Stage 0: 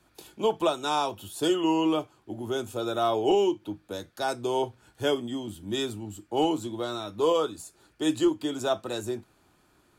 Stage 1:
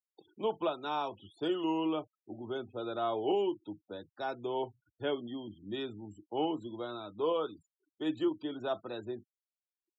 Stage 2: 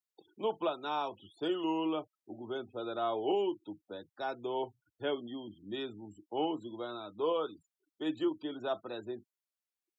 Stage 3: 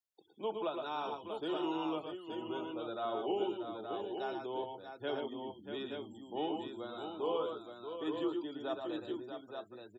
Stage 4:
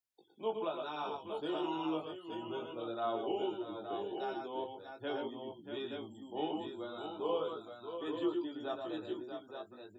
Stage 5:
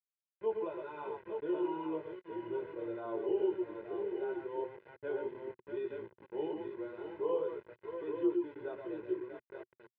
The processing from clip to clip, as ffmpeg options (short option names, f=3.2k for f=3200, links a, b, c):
-filter_complex "[0:a]acrossover=split=3900[a][b];[b]acompressor=threshold=-55dB:ratio=4:attack=1:release=60[c];[a][c]amix=inputs=2:normalize=0,afftfilt=real='re*gte(hypot(re,im),0.00708)':imag='im*gte(hypot(re,im),0.00708)':win_size=1024:overlap=0.75,highpass=110,volume=-7.5dB"
-af "lowshelf=f=130:g=-8"
-af "aecho=1:1:113|127|636|872:0.473|0.316|0.398|0.501,volume=-4.5dB"
-af "flanger=delay=17:depth=3.2:speed=0.36,volume=2.5dB"
-af "aeval=exprs='val(0)*gte(abs(val(0)),0.00562)':c=same,highpass=110,equalizer=f=120:t=q:w=4:g=3,equalizer=f=230:t=q:w=4:g=6,equalizer=f=370:t=q:w=4:g=8,equalizer=f=650:t=q:w=4:g=-4,equalizer=f=1.2k:t=q:w=4:g=-8,lowpass=f=2.1k:w=0.5412,lowpass=f=2.1k:w=1.3066,aecho=1:1:2:0.82,volume=-4dB"